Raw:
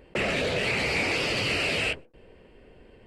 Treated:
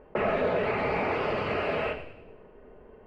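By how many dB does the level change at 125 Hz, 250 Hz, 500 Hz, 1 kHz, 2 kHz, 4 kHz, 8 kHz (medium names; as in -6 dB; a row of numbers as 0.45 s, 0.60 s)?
-3.0 dB, -1.0 dB, +3.0 dB, +5.0 dB, -6.5 dB, -14.0 dB, under -25 dB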